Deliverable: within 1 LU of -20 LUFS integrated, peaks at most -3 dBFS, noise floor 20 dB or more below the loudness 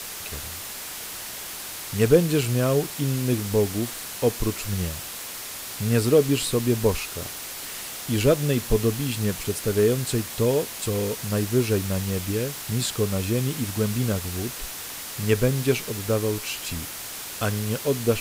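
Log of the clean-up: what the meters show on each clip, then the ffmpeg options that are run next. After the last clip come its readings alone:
noise floor -36 dBFS; noise floor target -45 dBFS; loudness -25.0 LUFS; peak level -5.0 dBFS; loudness target -20.0 LUFS
-> -af "afftdn=nr=9:nf=-36"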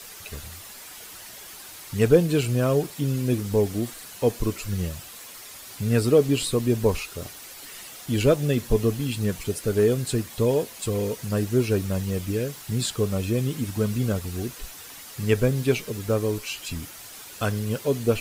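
noise floor -43 dBFS; noise floor target -45 dBFS
-> -af "afftdn=nr=6:nf=-43"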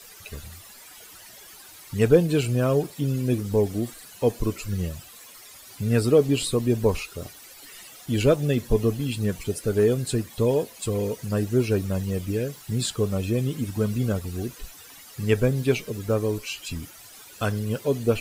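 noise floor -47 dBFS; loudness -25.0 LUFS; peak level -5.5 dBFS; loudness target -20.0 LUFS
-> -af "volume=1.78,alimiter=limit=0.708:level=0:latency=1"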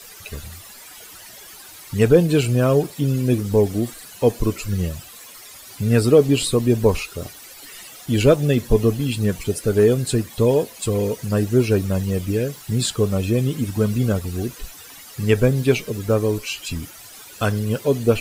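loudness -20.0 LUFS; peak level -3.0 dBFS; noise floor -42 dBFS

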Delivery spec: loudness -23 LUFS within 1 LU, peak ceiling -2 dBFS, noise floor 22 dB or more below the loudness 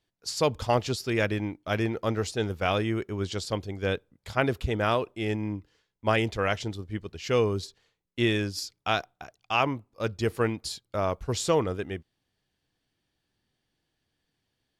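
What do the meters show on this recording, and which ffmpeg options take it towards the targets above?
loudness -29.0 LUFS; peak level -9.0 dBFS; loudness target -23.0 LUFS
-> -af "volume=2"

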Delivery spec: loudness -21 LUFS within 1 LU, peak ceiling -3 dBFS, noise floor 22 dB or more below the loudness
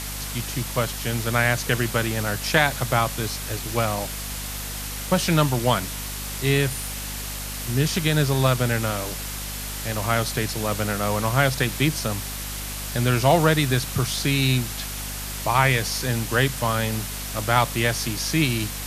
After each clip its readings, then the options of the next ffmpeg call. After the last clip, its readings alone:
hum 50 Hz; highest harmonic 250 Hz; hum level -33 dBFS; noise floor -32 dBFS; noise floor target -46 dBFS; loudness -23.5 LUFS; peak level -2.0 dBFS; loudness target -21.0 LUFS
-> -af "bandreject=f=50:t=h:w=4,bandreject=f=100:t=h:w=4,bandreject=f=150:t=h:w=4,bandreject=f=200:t=h:w=4,bandreject=f=250:t=h:w=4"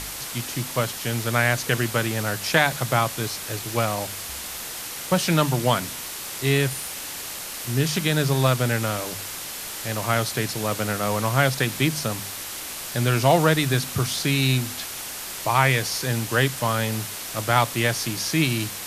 hum not found; noise floor -34 dBFS; noise floor target -46 dBFS
-> -af "afftdn=nr=12:nf=-34"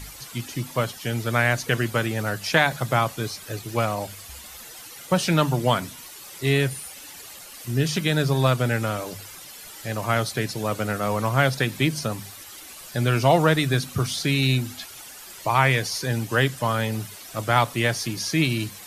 noise floor -42 dBFS; noise floor target -46 dBFS
-> -af "afftdn=nr=6:nf=-42"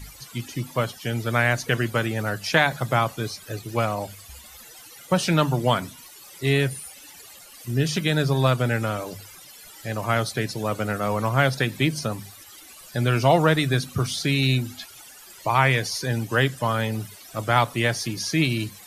noise floor -46 dBFS; loudness -23.5 LUFS; peak level -2.5 dBFS; loudness target -21.0 LUFS
-> -af "volume=1.33,alimiter=limit=0.708:level=0:latency=1"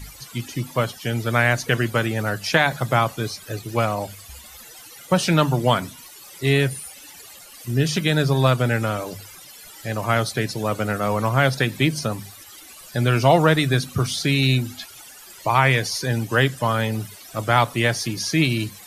loudness -21.5 LUFS; peak level -3.0 dBFS; noise floor -44 dBFS

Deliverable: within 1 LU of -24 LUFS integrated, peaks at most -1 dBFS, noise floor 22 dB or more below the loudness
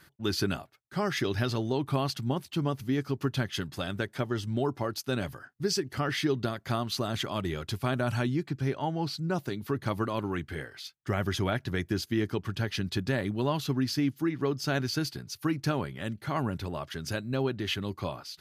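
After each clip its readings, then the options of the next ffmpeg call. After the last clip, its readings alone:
loudness -31.5 LUFS; peak level -15.0 dBFS; loudness target -24.0 LUFS
-> -af "volume=2.37"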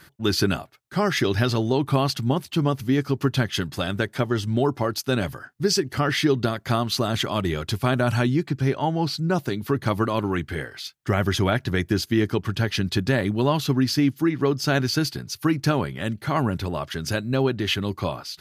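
loudness -24.0 LUFS; peak level -7.5 dBFS; noise floor -54 dBFS

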